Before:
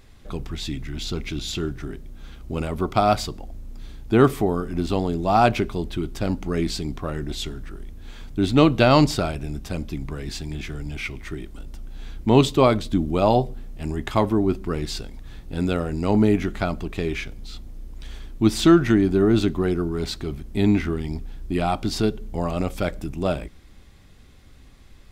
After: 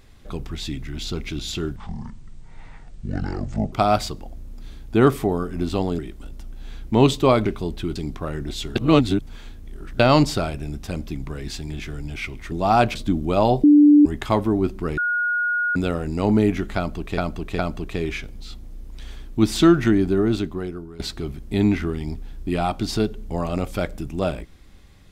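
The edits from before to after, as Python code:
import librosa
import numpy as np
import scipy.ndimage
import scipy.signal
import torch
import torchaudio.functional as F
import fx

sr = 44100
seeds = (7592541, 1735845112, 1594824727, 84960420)

y = fx.edit(x, sr, fx.speed_span(start_s=1.76, length_s=1.14, speed=0.58),
    fx.swap(start_s=5.16, length_s=0.43, other_s=11.33, other_length_s=1.47),
    fx.cut(start_s=6.09, length_s=0.68),
    fx.reverse_span(start_s=7.57, length_s=1.24),
    fx.bleep(start_s=13.49, length_s=0.42, hz=294.0, db=-8.0),
    fx.bleep(start_s=14.83, length_s=0.78, hz=1440.0, db=-19.0),
    fx.repeat(start_s=16.62, length_s=0.41, count=3),
    fx.fade_out_to(start_s=19.03, length_s=1.0, floor_db=-16.5), tone=tone)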